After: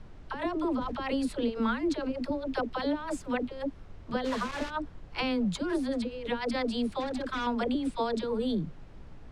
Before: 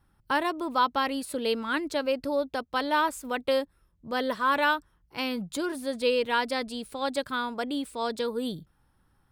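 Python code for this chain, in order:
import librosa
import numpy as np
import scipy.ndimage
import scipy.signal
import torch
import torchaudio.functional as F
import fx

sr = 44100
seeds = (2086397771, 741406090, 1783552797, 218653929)

y = fx.highpass(x, sr, hz=120.0, slope=6)
y = fx.low_shelf(y, sr, hz=400.0, db=5.5)
y = fx.over_compress(y, sr, threshold_db=-29.0, ratio=-0.5)
y = fx.dispersion(y, sr, late='lows', ms=68.0, hz=470.0)
y = fx.overload_stage(y, sr, gain_db=29.5, at=(7.0, 7.47))
y = fx.dmg_noise_colour(y, sr, seeds[0], colour='brown', level_db=-45.0)
y = fx.quant_dither(y, sr, seeds[1], bits=6, dither='none', at=(4.24, 4.69), fade=0.02)
y = fx.air_absorb(y, sr, metres=90.0)
y = fx.sustainer(y, sr, db_per_s=41.0, at=(0.63, 1.13))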